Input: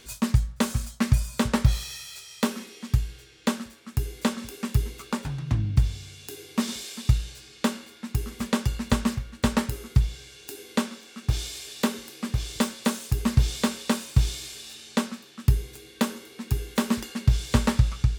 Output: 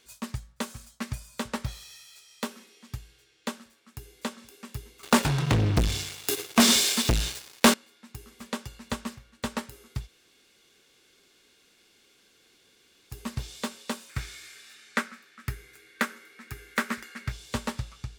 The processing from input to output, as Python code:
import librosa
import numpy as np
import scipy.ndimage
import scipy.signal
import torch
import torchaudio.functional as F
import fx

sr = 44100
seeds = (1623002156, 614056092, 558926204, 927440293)

y = fx.leveller(x, sr, passes=5, at=(5.03, 7.74))
y = fx.band_shelf(y, sr, hz=1700.0, db=11.5, octaves=1.1, at=(14.09, 17.32))
y = fx.edit(y, sr, fx.room_tone_fill(start_s=10.07, length_s=3.04, crossfade_s=0.04), tone=tone)
y = fx.low_shelf(y, sr, hz=230.0, db=-10.5)
y = fx.upward_expand(y, sr, threshold_db=-33.0, expansion=1.5)